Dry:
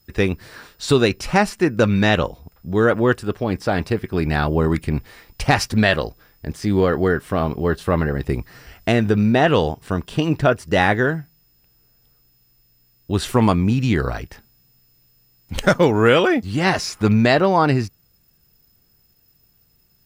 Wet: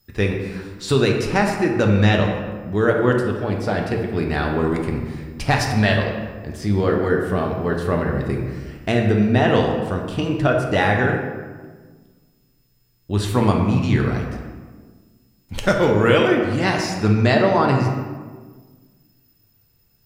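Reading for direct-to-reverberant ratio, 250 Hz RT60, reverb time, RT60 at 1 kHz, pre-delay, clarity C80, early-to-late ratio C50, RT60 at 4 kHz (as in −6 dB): 1.0 dB, 1.9 s, 1.5 s, 1.4 s, 5 ms, 6.0 dB, 4.0 dB, 0.85 s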